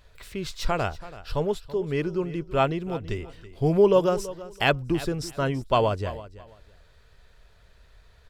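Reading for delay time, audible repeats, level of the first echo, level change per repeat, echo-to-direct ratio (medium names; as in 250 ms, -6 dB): 331 ms, 2, -16.5 dB, -13.0 dB, -16.5 dB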